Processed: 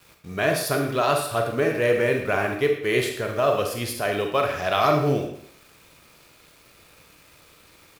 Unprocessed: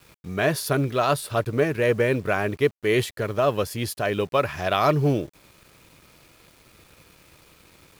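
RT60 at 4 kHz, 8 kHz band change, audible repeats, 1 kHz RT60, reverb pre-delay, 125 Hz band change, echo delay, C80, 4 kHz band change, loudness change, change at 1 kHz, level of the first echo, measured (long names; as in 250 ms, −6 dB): 0.60 s, +1.5 dB, 1, 0.65 s, 33 ms, −3.0 dB, 114 ms, 8.0 dB, +1.5 dB, +0.5 dB, +1.5 dB, −14.0 dB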